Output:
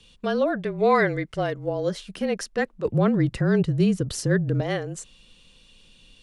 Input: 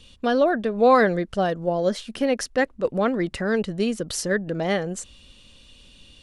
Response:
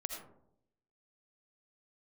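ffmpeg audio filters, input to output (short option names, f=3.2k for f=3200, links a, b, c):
-filter_complex "[0:a]asettb=1/sr,asplit=3[a][b][c];[a]atrim=end=2.854[d];[b]atrim=start=2.85:end=4.61,asetpts=PTS-STARTPTS,afade=t=in:d=0.004:c=qsin,afade=t=out:st=1.756:d=0.004:c=qsin,equalizer=f=130:w=0.56:g=12.5[e];[c]atrim=start=4.606[f];[d][e]acrossfade=d=0.004:c1=hsin:c2=qsin[g];[g][f]acrossfade=d=0.004:c1=qsin:c2=hsin,afreqshift=-32,asettb=1/sr,asplit=3[h][i][j];[h]atrim=end=0.634[k];[i]atrim=start=0.63:end=1.67,asetpts=PTS-STARTPTS,afade=t=in:d=0.004:c=qsin,afade=t=out:st=1.036:d=0.004:c=qsin,equalizer=f=2.1k:w=6:g=12.5[l];[j]atrim=start=1.666[m];[k][l]acrossfade=d=0.004:c1=hsin:c2=qsin[n];[n][m]acrossfade=d=0.004:c1=qsin:c2=hsin,volume=-3.5dB"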